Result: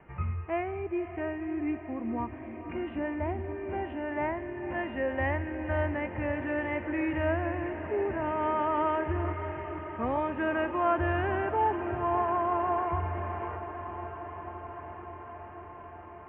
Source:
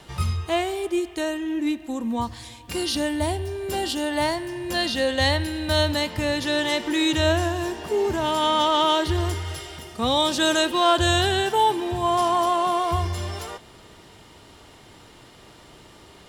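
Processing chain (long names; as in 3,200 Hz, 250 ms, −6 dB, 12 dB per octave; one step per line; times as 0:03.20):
Butterworth low-pass 2,500 Hz 72 dB per octave
feedback delay with all-pass diffusion 526 ms, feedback 79%, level −11.5 dB
level −7.5 dB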